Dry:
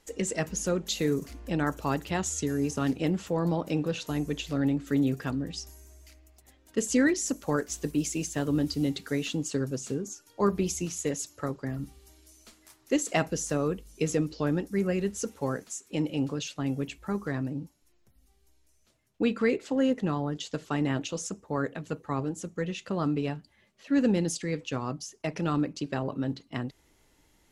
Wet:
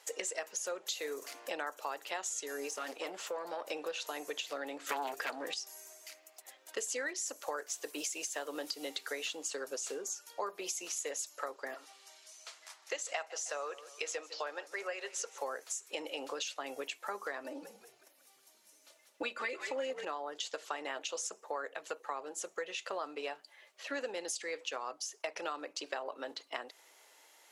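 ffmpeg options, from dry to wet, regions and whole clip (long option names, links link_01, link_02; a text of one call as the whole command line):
ffmpeg -i in.wav -filter_complex "[0:a]asettb=1/sr,asplit=3[link_01][link_02][link_03];[link_01]atrim=end=2.694[link_04];[link_02]atrim=start=2.69:end=3.71,asetpts=PTS-STARTPTS,afade=type=in:duration=0.004:curve=qsin,afade=type=out:start_time=1.016:duration=0.004:curve=qsin,aeval=exprs='if(lt(val(0),0),0.708*val(0),val(0))':channel_layout=same,aeval=exprs='(tanh(11.2*val(0)+0.55)-tanh(0.55))/11.2':channel_layout=same[link_05];[link_03]atrim=start=3.706[link_06];[link_04][link_05]acrossfade=duration=0.004:curve1=hsin:curve2=qsin[link_07];[link_07][link_06]acrossfade=duration=0.004:curve1=qsin:curve2=hsin,asettb=1/sr,asplit=3[link_08][link_09][link_10];[link_08]atrim=end=4.894[link_11];[link_09]atrim=start=4.89:end=5.54,asetpts=PTS-STARTPTS,afade=type=in:duration=0.004:curve=qsin,afade=type=out:start_time=0.646:duration=0.004:curve=qsin,highpass=100,aeval=exprs='0.158*sin(PI/2*2.51*val(0)/0.158)':channel_layout=same[link_12];[link_10]atrim=start=5.536[link_13];[link_11][link_12]acrossfade=duration=0.004:curve1=hsin:curve2=qsin[link_14];[link_14][link_13]acrossfade=duration=0.004:curve1=qsin:curve2=hsin,asettb=1/sr,asplit=3[link_15][link_16][link_17];[link_15]atrim=end=11.744[link_18];[link_16]atrim=start=11.74:end=15.38,asetpts=PTS-STARTPTS,afade=type=in:duration=0.004:curve=qsin,afade=type=out:start_time=3.636:duration=0.004:curve=qsin,highpass=580,lowpass=6800,aecho=1:1:156|312|468:0.0944|0.033|0.0116,atrim=end_sample=160524[link_19];[link_17]atrim=start=15.376[link_20];[link_18][link_19]acrossfade=duration=0.004:curve1=hsin:curve2=qsin[link_21];[link_21][link_20]acrossfade=duration=0.004:curve1=qsin:curve2=hsin,asettb=1/sr,asplit=3[link_22][link_23][link_24];[link_22]atrim=end=17.444[link_25];[link_23]atrim=start=17.44:end=20.05,asetpts=PTS-STARTPTS,afade=type=in:duration=0.004:curve=qsin,afade=type=out:start_time=2.606:duration=0.004:curve=qsin,aecho=1:1:3.4:0.8,atrim=end_sample=115101,asplit=8[link_26][link_27][link_28][link_29][link_30][link_31][link_32][link_33];[link_27]adelay=183,afreqshift=-80,volume=-9dB[link_34];[link_28]adelay=366,afreqshift=-160,volume=-13.7dB[link_35];[link_29]adelay=549,afreqshift=-240,volume=-18.5dB[link_36];[link_30]adelay=732,afreqshift=-320,volume=-23.2dB[link_37];[link_31]adelay=915,afreqshift=-400,volume=-27.9dB[link_38];[link_32]adelay=1098,afreqshift=-480,volume=-32.7dB[link_39];[link_33]adelay=1281,afreqshift=-560,volume=-37.4dB[link_40];[link_26][link_34][link_35][link_36][link_37][link_38][link_39][link_40]amix=inputs=8:normalize=0,atrim=end_sample=115101[link_41];[link_24]atrim=start=20.046[link_42];[link_25][link_41]acrossfade=duration=0.004:curve1=hsin:curve2=qsin[link_43];[link_43][link_42]acrossfade=duration=0.004:curve1=qsin:curve2=hsin,highpass=frequency=520:width=0.5412,highpass=frequency=520:width=1.3066,acompressor=threshold=-43dB:ratio=5,volume=6.5dB" out.wav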